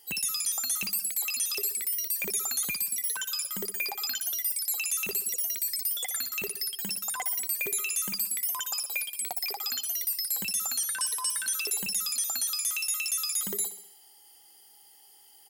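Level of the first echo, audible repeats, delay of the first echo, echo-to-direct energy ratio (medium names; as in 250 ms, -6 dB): -12.0 dB, 5, 64 ms, -10.5 dB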